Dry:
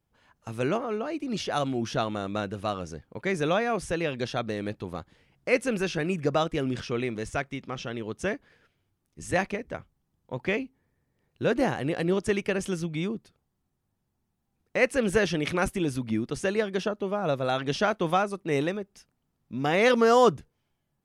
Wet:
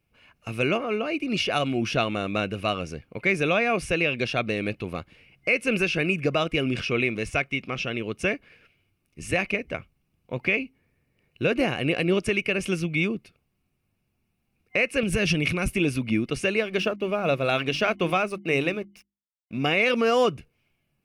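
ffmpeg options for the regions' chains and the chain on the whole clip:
-filter_complex "[0:a]asettb=1/sr,asplit=3[a][b][c];[a]atrim=end=15.034[d];[b]atrim=start=15.03:end=15.74,asetpts=PTS-STARTPTS,afade=t=in:d=0.004:c=qsin,afade=t=out:st=0.706:d=0.004:c=qsin,bass=f=250:g=10,treble=f=4k:g=6,acompressor=threshold=-23dB:ratio=10:attack=3.2:release=140:knee=1:detection=peak[e];[c]atrim=start=15.736[f];[d][e]acrossfade=d=0.004:c1=hsin:c2=qsin[g];[g][f]acrossfade=d=0.004:c1=qsin:c2=hsin,asettb=1/sr,asplit=3[h][i][j];[h]atrim=end=16.574[k];[i]atrim=start=16.57:end=19.58,asetpts=PTS-STARTPTS,afade=t=in:d=0.004:c=qsin,afade=t=out:st=3.006:d=0.004:c=qsin,aeval=exprs='sgn(val(0))*max(abs(val(0))-0.00188,0)':c=same,bandreject=f=50:t=h:w=6,bandreject=f=100:t=h:w=6,bandreject=f=150:t=h:w=6,bandreject=f=200:t=h:w=6,bandreject=f=250:t=h:w=6,bandreject=f=300:t=h:w=6,bandreject=f=350:t=h:w=6[l];[j]atrim=start=19.576[m];[k][l]acrossfade=d=0.004:c1=hsin:c2=qsin[n];[n][m]acrossfade=d=0.004:c1=qsin:c2=hsin,superequalizer=9b=0.562:12b=3.55:15b=0.631,alimiter=limit=-15dB:level=0:latency=1:release=202,volume=3.5dB"

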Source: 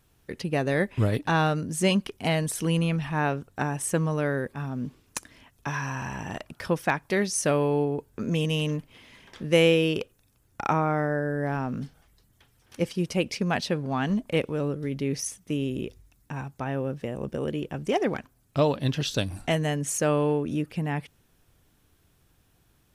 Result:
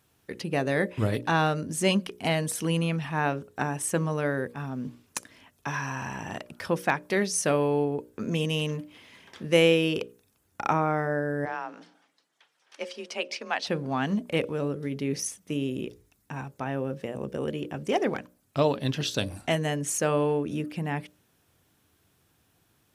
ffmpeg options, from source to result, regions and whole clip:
-filter_complex "[0:a]asettb=1/sr,asplit=3[a][b][c];[a]atrim=end=11.454[d];[b]atrim=start=11.45:end=13.67,asetpts=PTS-STARTPTS,afade=t=in:d=0.004:c=qsin,afade=t=out:st=2.216:d=0.004:c=qsin,afreqshift=30,highpass=630,lowpass=6k,asplit=2[e][f];[f]adelay=141,lowpass=f=1k:p=1,volume=-21dB,asplit=2[g][h];[h]adelay=141,lowpass=f=1k:p=1,volume=0.44,asplit=2[i][j];[j]adelay=141,lowpass=f=1k:p=1,volume=0.44[k];[e][g][i][k]amix=inputs=4:normalize=0,atrim=end_sample=97902[l];[c]atrim=start=13.666[m];[d][l]acrossfade=d=0.004:c1=hsin:c2=qsin[n];[n][m]acrossfade=d=0.004:c1=qsin:c2=hsin,highpass=98,equalizer=f=150:t=o:w=0.77:g=-2,bandreject=f=60:t=h:w=6,bandreject=f=120:t=h:w=6,bandreject=f=180:t=h:w=6,bandreject=f=240:t=h:w=6,bandreject=f=300:t=h:w=6,bandreject=f=360:t=h:w=6,bandreject=f=420:t=h:w=6,bandreject=f=480:t=h:w=6,bandreject=f=540:t=h:w=6,bandreject=f=600:t=h:w=6"

